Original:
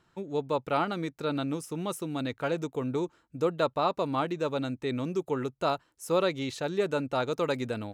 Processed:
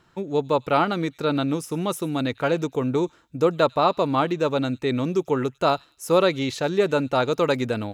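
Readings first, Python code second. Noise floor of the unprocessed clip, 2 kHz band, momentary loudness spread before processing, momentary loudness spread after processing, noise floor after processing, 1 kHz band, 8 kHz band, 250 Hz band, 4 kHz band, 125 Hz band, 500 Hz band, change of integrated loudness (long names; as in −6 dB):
−69 dBFS, +7.5 dB, 6 LU, 6 LU, −60 dBFS, +7.5 dB, +6.0 dB, +7.5 dB, +7.5 dB, +7.5 dB, +7.5 dB, +7.5 dB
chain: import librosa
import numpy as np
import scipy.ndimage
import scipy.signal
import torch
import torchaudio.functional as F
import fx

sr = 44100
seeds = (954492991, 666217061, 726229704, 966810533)

p1 = fx.peak_eq(x, sr, hz=8600.0, db=-5.0, octaves=0.25)
p2 = p1 + fx.echo_wet_highpass(p1, sr, ms=99, feedback_pct=31, hz=3100.0, wet_db=-19.5, dry=0)
y = F.gain(torch.from_numpy(p2), 7.5).numpy()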